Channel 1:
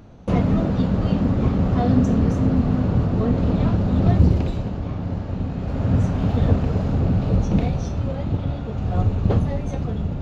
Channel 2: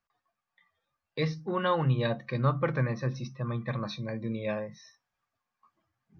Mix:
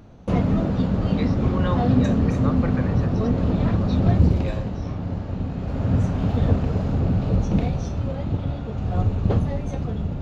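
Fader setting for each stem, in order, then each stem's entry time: -1.5, -2.0 dB; 0.00, 0.00 s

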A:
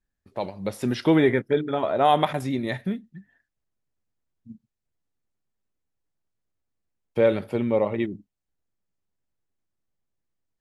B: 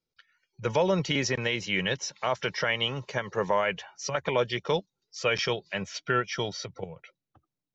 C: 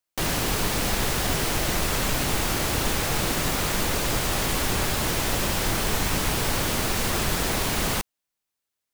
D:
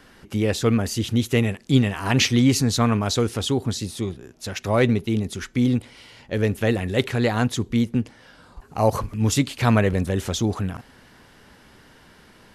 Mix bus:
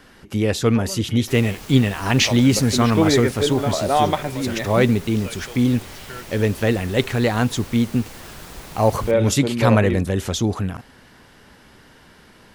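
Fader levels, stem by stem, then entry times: +1.0, -11.0, -14.0, +2.0 dB; 1.90, 0.00, 1.10, 0.00 s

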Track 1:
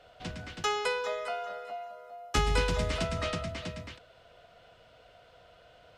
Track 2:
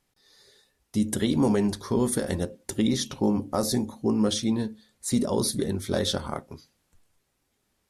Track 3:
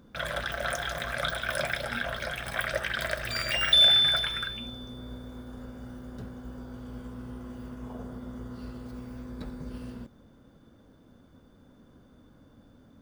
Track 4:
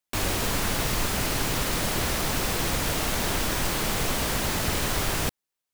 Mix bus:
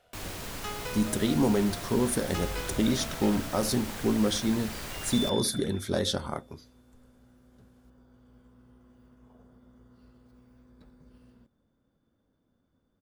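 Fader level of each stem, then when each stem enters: -9.0, -2.0, -17.0, -12.5 dB; 0.00, 0.00, 1.40, 0.00 s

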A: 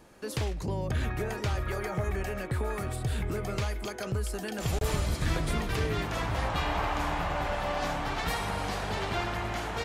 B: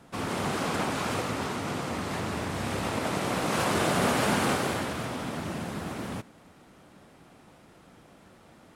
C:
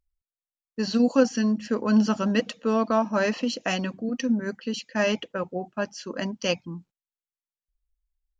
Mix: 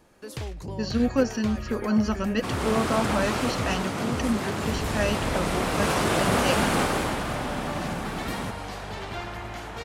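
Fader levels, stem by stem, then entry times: -3.0, +2.0, -3.0 dB; 0.00, 2.30, 0.00 s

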